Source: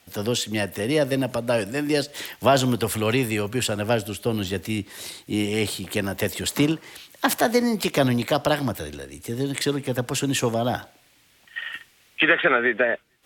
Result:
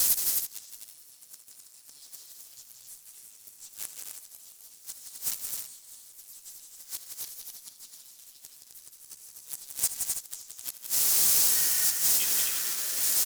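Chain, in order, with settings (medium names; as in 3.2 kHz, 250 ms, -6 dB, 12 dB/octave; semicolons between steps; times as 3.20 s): jump at every zero crossing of -28 dBFS; inverse Chebyshev high-pass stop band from 1.8 kHz, stop band 60 dB; dynamic bell 9.8 kHz, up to -3 dB, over -38 dBFS, Q 1; in parallel at -5.5 dB: fuzz box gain 36 dB, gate -41 dBFS; on the sum: inverted gate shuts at -15 dBFS, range -28 dB; on a send: multi-tap echo 60/79/171/259/325 ms -19.5/-14/-6/-5/-10.5 dB; on the sum: harmony voices -4 st -6 dB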